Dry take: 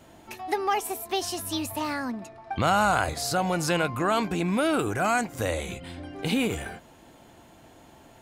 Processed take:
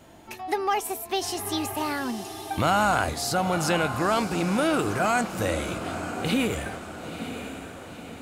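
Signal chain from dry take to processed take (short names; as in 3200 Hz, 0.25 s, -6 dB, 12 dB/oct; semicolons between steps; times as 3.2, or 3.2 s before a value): in parallel at -9 dB: soft clip -20.5 dBFS, distortion -13 dB; on the sum: diffused feedback echo 0.953 s, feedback 52%, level -9.5 dB; gain -1.5 dB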